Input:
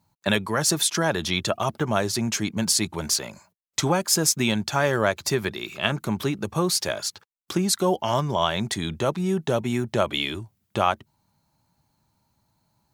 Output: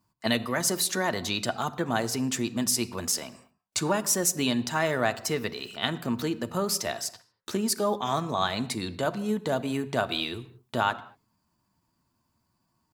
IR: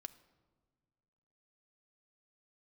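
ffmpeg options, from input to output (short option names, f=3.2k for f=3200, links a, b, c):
-filter_complex "[0:a]asetrate=49501,aresample=44100,atempo=0.890899[a];[1:a]atrim=start_sample=2205,afade=t=out:st=0.29:d=0.01,atrim=end_sample=13230[b];[a][b]afir=irnorm=-1:irlink=0,volume=1.5dB"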